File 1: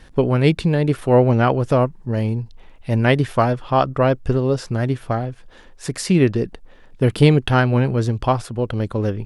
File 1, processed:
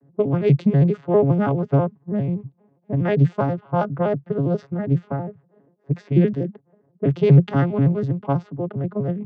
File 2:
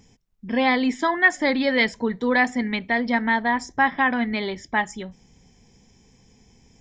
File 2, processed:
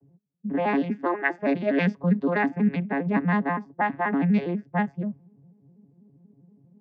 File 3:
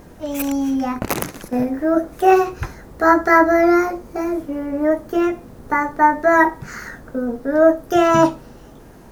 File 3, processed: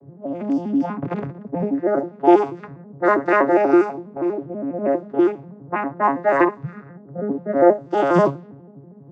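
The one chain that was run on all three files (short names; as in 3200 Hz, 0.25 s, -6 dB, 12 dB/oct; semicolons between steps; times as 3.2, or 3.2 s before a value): arpeggiated vocoder major triad, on C#3, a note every 81 ms; low-pass opened by the level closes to 530 Hz, open at -13 dBFS; gain -1 dB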